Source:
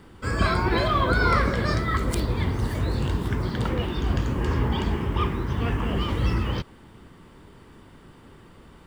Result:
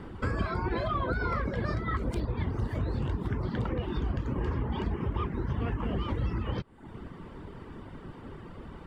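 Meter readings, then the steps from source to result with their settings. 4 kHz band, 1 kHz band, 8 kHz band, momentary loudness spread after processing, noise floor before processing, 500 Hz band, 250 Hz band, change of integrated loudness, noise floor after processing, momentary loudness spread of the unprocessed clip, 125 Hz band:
−13.0 dB, −8.5 dB, below −15 dB, 15 LU, −50 dBFS, −6.5 dB, −6.0 dB, −7.0 dB, −47 dBFS, 6 LU, −6.0 dB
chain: low-pass filter 1,500 Hz 6 dB per octave
reverb reduction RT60 0.61 s
downward compressor 6 to 1, threshold −35 dBFS, peak gain reduction 16.5 dB
level +7 dB

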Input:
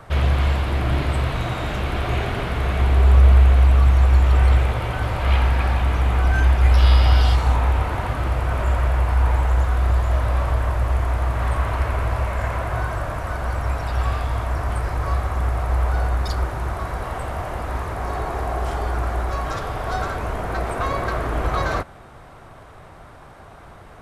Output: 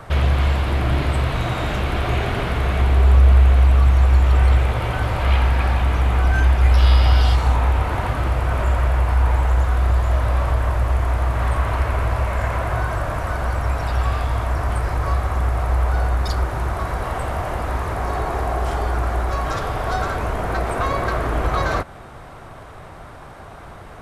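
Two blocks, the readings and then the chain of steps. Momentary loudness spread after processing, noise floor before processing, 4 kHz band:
10 LU, −43 dBFS, +1.5 dB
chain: in parallel at −1 dB: downward compressor, threshold −26 dBFS, peak gain reduction 16.5 dB
on the sum: hard clipping −5 dBFS, distortion −40 dB
level −1 dB

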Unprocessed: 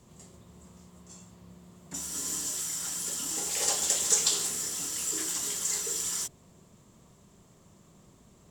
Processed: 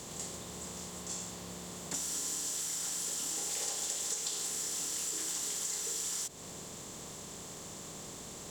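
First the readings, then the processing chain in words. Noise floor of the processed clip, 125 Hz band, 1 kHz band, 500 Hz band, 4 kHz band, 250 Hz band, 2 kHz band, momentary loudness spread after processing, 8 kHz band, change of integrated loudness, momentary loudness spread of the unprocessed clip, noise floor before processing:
−47 dBFS, 0.0 dB, −3.5 dB, −3.0 dB, −5.0 dB, −1.0 dB, −4.5 dB, 11 LU, −5.0 dB, −7.5 dB, 10 LU, −59 dBFS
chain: compressor on every frequency bin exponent 0.6
downward compressor 6 to 1, threshold −34 dBFS, peak gain reduction 15.5 dB

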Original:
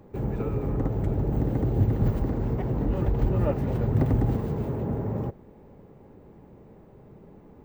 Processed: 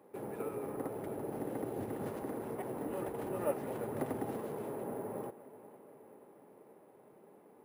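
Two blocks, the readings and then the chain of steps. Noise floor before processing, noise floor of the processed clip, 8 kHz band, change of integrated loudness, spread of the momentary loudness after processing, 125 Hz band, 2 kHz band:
−51 dBFS, −61 dBFS, can't be measured, −13.0 dB, 20 LU, −24.0 dB, −5.0 dB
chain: high-pass filter 380 Hz 12 dB per octave
high-shelf EQ 6,200 Hz −7 dB
notch filter 4,400 Hz, Q 22
on a send: tape delay 480 ms, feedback 67%, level −17 dB, low-pass 4,500 Hz
on the sum: bad sample-rate conversion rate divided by 4×, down none, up hold
level −4.5 dB

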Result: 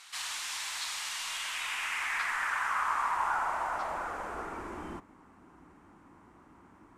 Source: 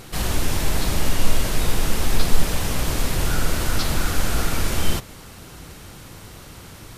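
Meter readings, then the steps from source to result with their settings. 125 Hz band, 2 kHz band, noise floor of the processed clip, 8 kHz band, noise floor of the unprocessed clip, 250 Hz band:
−31.0 dB, −2.5 dB, −58 dBFS, −12.0 dB, −42 dBFS, −20.5 dB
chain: band-pass filter sweep 3,900 Hz → 280 Hz, 0:01.22–0:05.02
graphic EQ with 10 bands 125 Hz −11 dB, 250 Hz −5 dB, 500 Hz −11 dB, 1,000 Hz +12 dB, 2,000 Hz +5 dB, 4,000 Hz −8 dB, 8,000 Hz +8 dB

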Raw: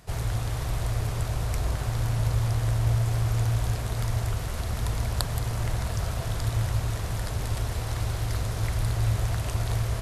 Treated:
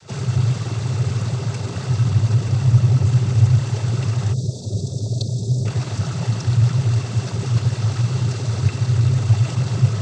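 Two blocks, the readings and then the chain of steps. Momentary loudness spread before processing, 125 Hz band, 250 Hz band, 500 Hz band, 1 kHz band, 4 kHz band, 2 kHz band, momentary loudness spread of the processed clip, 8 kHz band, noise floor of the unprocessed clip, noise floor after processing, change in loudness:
5 LU, +10.0 dB, +11.5 dB, +4.5 dB, +1.0 dB, +4.5 dB, +2.0 dB, 8 LU, +3.0 dB, −32 dBFS, −30 dBFS, +8.5 dB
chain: low-pass filter 5,300 Hz 12 dB per octave
on a send: backwards echo 73 ms −20 dB
on the sum: time-frequency box erased 0:04.33–0:05.65, 660–4,000 Hz
in parallel at −10 dB: wave folding −24 dBFS
on the sum: cochlear-implant simulation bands 16
bass and treble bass +10 dB, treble +11 dB
hollow resonant body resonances 390/1,300/2,700 Hz, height 8 dB

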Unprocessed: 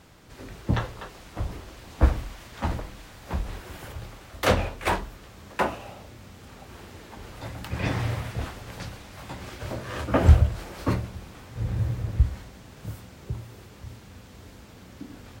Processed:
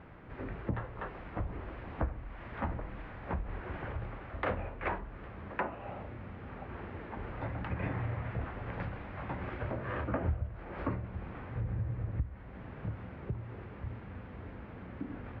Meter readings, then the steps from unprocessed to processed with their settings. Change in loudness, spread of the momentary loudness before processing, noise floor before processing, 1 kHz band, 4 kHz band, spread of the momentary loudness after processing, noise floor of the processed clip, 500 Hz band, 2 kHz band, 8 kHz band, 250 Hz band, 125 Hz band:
−11.5 dB, 21 LU, −48 dBFS, −7.5 dB, −19.5 dB, 10 LU, −48 dBFS, −8.5 dB, −7.5 dB, below −35 dB, −7.5 dB, −10.0 dB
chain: low-pass filter 2,200 Hz 24 dB per octave
downward compressor 4 to 1, threshold −35 dBFS, peak gain reduction 21.5 dB
level +1.5 dB

